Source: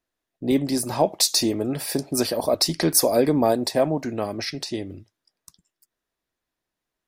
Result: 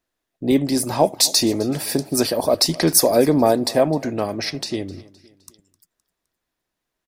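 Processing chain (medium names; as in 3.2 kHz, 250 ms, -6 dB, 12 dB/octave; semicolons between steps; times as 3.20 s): feedback delay 258 ms, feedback 48%, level -21 dB; trim +3.5 dB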